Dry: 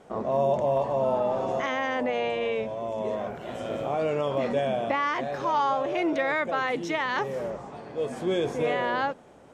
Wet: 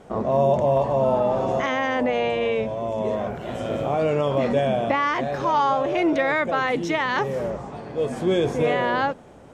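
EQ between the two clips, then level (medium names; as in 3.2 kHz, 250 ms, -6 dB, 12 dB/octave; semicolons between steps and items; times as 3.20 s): bass shelf 160 Hz +8.5 dB; +4.0 dB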